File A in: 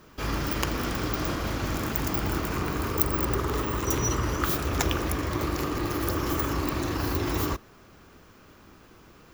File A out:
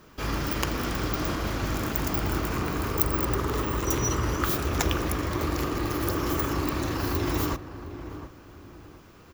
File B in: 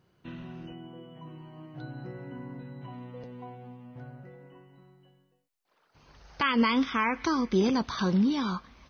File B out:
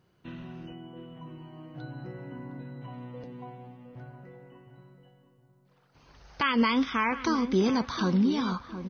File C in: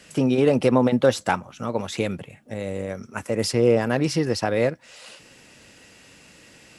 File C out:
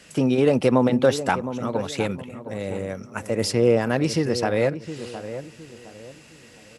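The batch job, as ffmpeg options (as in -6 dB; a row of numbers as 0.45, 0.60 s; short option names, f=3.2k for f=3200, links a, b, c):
-filter_complex "[0:a]asplit=2[a][b];[b]adelay=713,lowpass=f=1.3k:p=1,volume=-11dB,asplit=2[c][d];[d]adelay=713,lowpass=f=1.3k:p=1,volume=0.35,asplit=2[e][f];[f]adelay=713,lowpass=f=1.3k:p=1,volume=0.35,asplit=2[g][h];[h]adelay=713,lowpass=f=1.3k:p=1,volume=0.35[i];[a][c][e][g][i]amix=inputs=5:normalize=0"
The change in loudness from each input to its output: +0.5, 0.0, 0.0 LU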